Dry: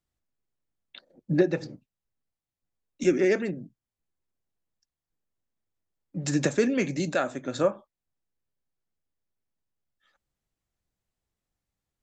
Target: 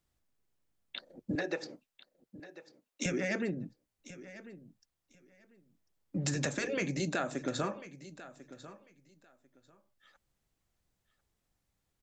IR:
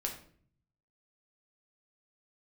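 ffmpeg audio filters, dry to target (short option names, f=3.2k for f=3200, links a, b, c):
-filter_complex "[0:a]asettb=1/sr,asplit=3[a][b][c];[a]atrim=end=1.354[d];[b]atrim=start=1.35:end=3.06,asetpts=PTS-STARTPTS,afade=t=in:d=0.004:c=qsin,afade=t=out:st=1.706:d=0.004:c=qsin,highpass=470[e];[c]atrim=start=3.056[f];[d][e]acrossfade=d=0.004:c1=hsin:c2=qsin[g];[g][f]acrossfade=d=0.004:c1=qsin:c2=hsin,afftfilt=real='re*lt(hypot(re,im),0.447)':imag='im*lt(hypot(re,im),0.447)':win_size=1024:overlap=0.75,acompressor=threshold=-36dB:ratio=4,asplit=2[h][i];[i]aecho=0:1:1045|2090:0.158|0.0285[j];[h][j]amix=inputs=2:normalize=0,volume=4.5dB"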